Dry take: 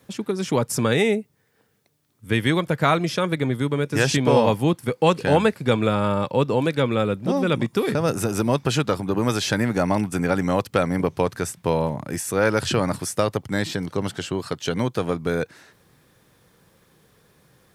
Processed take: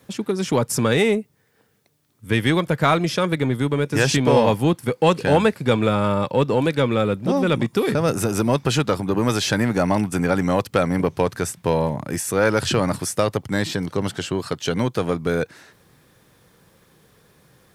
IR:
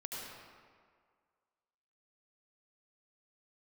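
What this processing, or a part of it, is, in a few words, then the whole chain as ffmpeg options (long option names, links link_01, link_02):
parallel distortion: -filter_complex "[0:a]asplit=2[link_01][link_02];[link_02]asoftclip=type=hard:threshold=-20dB,volume=-9.5dB[link_03];[link_01][link_03]amix=inputs=2:normalize=0"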